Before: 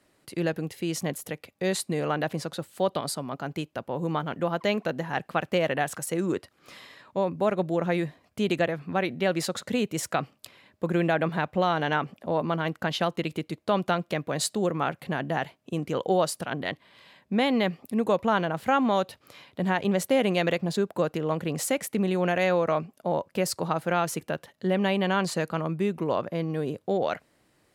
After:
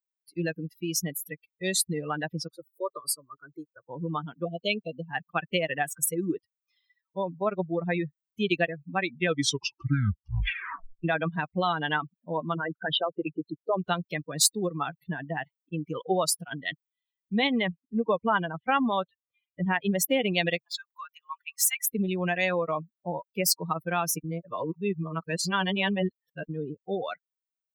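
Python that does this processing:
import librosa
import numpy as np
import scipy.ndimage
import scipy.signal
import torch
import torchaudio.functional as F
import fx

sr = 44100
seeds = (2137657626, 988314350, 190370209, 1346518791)

y = fx.fixed_phaser(x, sr, hz=770.0, stages=6, at=(2.48, 3.82))
y = fx.cheby1_bandstop(y, sr, low_hz=730.0, high_hz=2200.0, order=5, at=(4.45, 5.09))
y = fx.envelope_sharpen(y, sr, power=2.0, at=(12.54, 13.79))
y = fx.lowpass(y, sr, hz=3600.0, slope=24, at=(17.47, 19.81))
y = fx.highpass(y, sr, hz=980.0, slope=24, at=(20.61, 21.84))
y = fx.edit(y, sr, fx.tape_stop(start_s=9.1, length_s=1.94),
    fx.reverse_span(start_s=24.24, length_s=2.25), tone=tone)
y = fx.bin_expand(y, sr, power=3.0)
y = fx.low_shelf(y, sr, hz=260.0, db=8.0)
y = fx.spectral_comp(y, sr, ratio=2.0)
y = y * 10.0 ** (6.5 / 20.0)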